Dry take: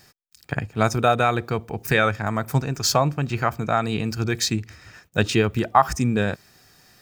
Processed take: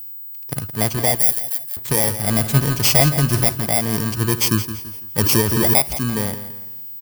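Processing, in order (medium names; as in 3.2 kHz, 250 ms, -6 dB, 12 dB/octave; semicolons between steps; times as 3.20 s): bit-reversed sample order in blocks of 32 samples; 1.15–1.77 s: differentiator; level rider; in parallel at -9 dB: word length cut 6-bit, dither none; 2.27–3.49 s: on the sum: power-law waveshaper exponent 0.7; whistle 16 kHz -26 dBFS; on a send: feedback delay 168 ms, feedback 35%, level -12 dB; 5.20–5.85 s: on the sum: swell ahead of each attack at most 23 dB/s; trim -4.5 dB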